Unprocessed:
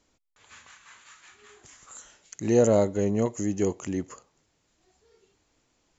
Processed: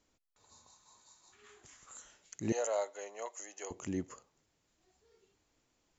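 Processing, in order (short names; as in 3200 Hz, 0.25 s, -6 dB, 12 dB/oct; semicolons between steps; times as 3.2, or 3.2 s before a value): 0.39–1.31 spectral repair 1100–3600 Hz before; 2.52–3.71 HPF 640 Hz 24 dB/oct; gain -6.5 dB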